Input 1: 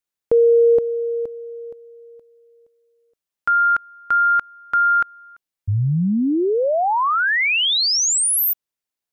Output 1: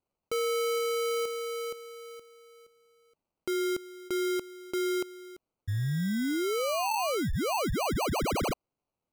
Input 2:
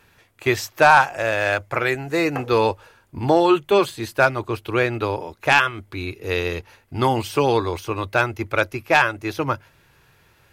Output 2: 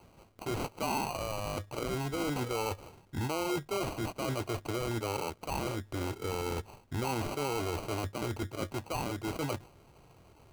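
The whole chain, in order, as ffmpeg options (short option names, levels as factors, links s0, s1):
-af "areverse,acompressor=threshold=0.0562:ratio=12:attack=0.14:release=86:knee=1:detection=peak,areverse,acrusher=samples=25:mix=1:aa=0.000001,volume=0.794"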